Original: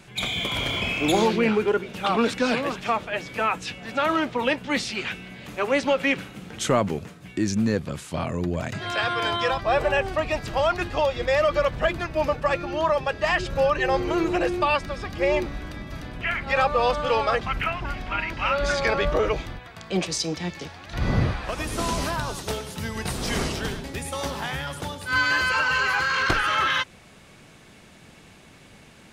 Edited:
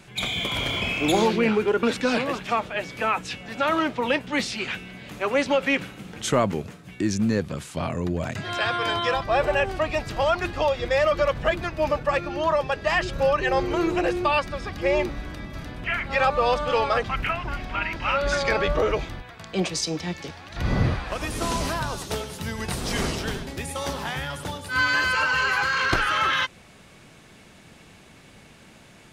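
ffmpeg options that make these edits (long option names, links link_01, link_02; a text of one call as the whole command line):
ffmpeg -i in.wav -filter_complex "[0:a]asplit=2[link_01][link_02];[link_01]atrim=end=1.832[link_03];[link_02]atrim=start=2.198[link_04];[link_03][link_04]acrossfade=duration=0.004:curve1=hsin:curve2=hsin" out.wav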